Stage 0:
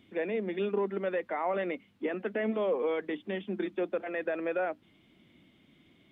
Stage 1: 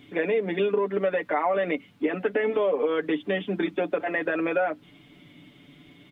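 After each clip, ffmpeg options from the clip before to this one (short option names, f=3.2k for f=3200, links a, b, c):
-af "aecho=1:1:6.9:0.75,acompressor=threshold=-29dB:ratio=6,volume=8.5dB"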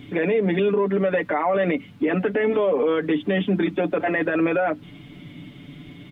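-af "bass=f=250:g=8,treble=f=4k:g=-2,alimiter=limit=-20dB:level=0:latency=1:release=27,volume=6.5dB"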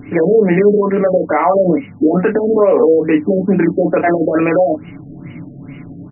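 -filter_complex "[0:a]asplit=2[a][b];[b]adelay=29,volume=-6dB[c];[a][c]amix=inputs=2:normalize=0,afftfilt=real='re*lt(b*sr/1024,690*pow(3000/690,0.5+0.5*sin(2*PI*2.3*pts/sr)))':imag='im*lt(b*sr/1024,690*pow(3000/690,0.5+0.5*sin(2*PI*2.3*pts/sr)))':win_size=1024:overlap=0.75,volume=8.5dB"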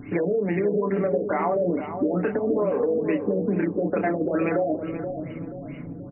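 -filter_complex "[0:a]acompressor=threshold=-15dB:ratio=6,asplit=2[a][b];[b]adelay=479,lowpass=f=1k:p=1,volume=-7dB,asplit=2[c][d];[d]adelay=479,lowpass=f=1k:p=1,volume=0.46,asplit=2[e][f];[f]adelay=479,lowpass=f=1k:p=1,volume=0.46,asplit=2[g][h];[h]adelay=479,lowpass=f=1k:p=1,volume=0.46,asplit=2[i][j];[j]adelay=479,lowpass=f=1k:p=1,volume=0.46[k];[a][c][e][g][i][k]amix=inputs=6:normalize=0,volume=-6dB"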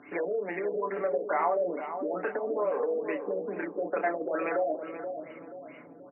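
-af "highpass=620,lowpass=2.1k"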